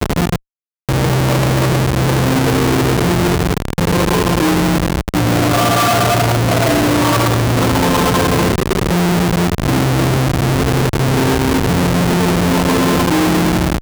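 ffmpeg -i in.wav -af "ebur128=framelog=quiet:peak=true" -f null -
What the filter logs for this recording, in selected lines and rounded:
Integrated loudness:
  I:         -14.2 LUFS
  Threshold: -24.2 LUFS
Loudness range:
  LRA:         1.5 LU
  Threshold: -34.2 LUFS
  LRA low:   -14.7 LUFS
  LRA high:  -13.2 LUFS
True peak:
  Peak:       -4.6 dBFS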